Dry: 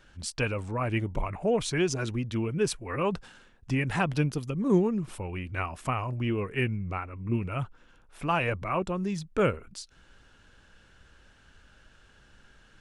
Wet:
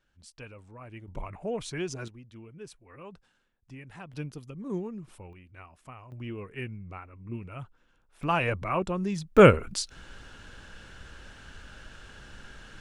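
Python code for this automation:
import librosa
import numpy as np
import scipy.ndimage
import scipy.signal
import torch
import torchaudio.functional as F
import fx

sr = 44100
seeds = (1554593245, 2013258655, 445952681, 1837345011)

y = fx.gain(x, sr, db=fx.steps((0.0, -16.5), (1.08, -7.0), (2.08, -18.0), (4.13, -10.5), (5.33, -17.0), (6.12, -9.0), (8.23, 0.5), (9.37, 10.0)))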